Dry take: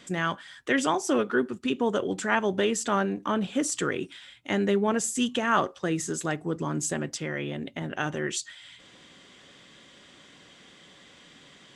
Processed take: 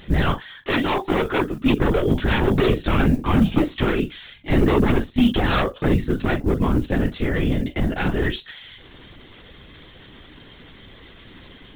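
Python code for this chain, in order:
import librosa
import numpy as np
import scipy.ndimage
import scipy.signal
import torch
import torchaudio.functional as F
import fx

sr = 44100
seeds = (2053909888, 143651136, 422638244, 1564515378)

y = fx.doubler(x, sr, ms=42.0, db=-11)
y = 10.0 ** (-21.5 / 20.0) * (np.abs((y / 10.0 ** (-21.5 / 20.0) + 3.0) % 4.0 - 2.0) - 1.0)
y = fx.peak_eq(y, sr, hz=150.0, db=8.0, octaves=2.0)
y = fx.lpc_vocoder(y, sr, seeds[0], excitation='whisper', order=16)
y = fx.mod_noise(y, sr, seeds[1], snr_db=35)
y = fx.low_shelf(y, sr, hz=230.0, db=-8.0, at=(0.38, 1.6))
y = y * 10.0 ** (6.5 / 20.0)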